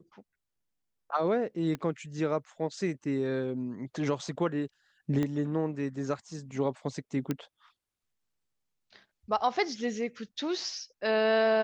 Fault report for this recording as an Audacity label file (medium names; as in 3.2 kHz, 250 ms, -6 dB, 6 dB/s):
1.750000	1.750000	pop -22 dBFS
5.230000	5.230000	pop -19 dBFS
7.310000	7.310000	pop -17 dBFS